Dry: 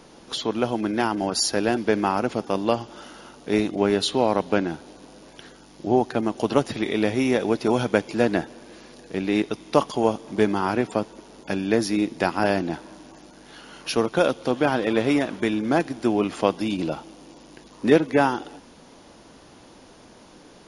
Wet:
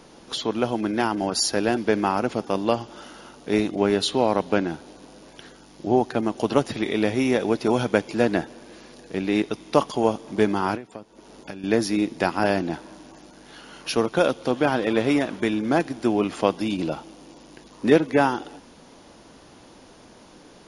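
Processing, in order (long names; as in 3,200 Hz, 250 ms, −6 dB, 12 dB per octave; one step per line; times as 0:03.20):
0:10.75–0:11.64: downward compressor 16 to 1, threshold −33 dBFS, peak gain reduction 17.5 dB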